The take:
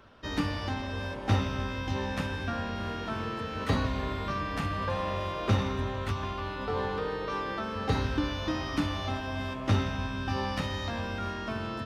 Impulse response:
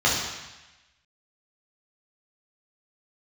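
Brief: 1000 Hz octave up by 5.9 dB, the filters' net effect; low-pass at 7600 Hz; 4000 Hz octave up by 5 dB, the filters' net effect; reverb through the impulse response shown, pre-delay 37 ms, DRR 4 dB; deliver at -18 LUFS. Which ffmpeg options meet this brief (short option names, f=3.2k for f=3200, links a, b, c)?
-filter_complex "[0:a]lowpass=7.6k,equalizer=f=1k:t=o:g=7,equalizer=f=4k:t=o:g=6,asplit=2[a][b];[1:a]atrim=start_sample=2205,adelay=37[c];[b][c]afir=irnorm=-1:irlink=0,volume=-21.5dB[d];[a][d]amix=inputs=2:normalize=0,volume=10dB"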